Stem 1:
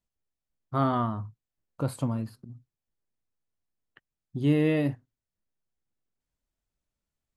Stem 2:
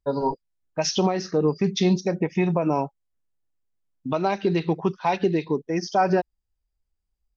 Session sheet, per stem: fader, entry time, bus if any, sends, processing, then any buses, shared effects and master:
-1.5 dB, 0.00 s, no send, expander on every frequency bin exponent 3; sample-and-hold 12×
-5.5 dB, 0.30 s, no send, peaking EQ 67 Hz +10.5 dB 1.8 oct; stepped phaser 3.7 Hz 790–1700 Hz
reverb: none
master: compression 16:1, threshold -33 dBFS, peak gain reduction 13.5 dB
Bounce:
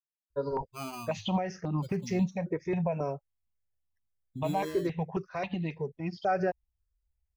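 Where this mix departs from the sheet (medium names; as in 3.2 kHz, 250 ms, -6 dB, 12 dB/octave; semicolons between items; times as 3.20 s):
stem 1 -1.5 dB -> -9.5 dB; master: missing compression 16:1, threshold -33 dBFS, peak gain reduction 13.5 dB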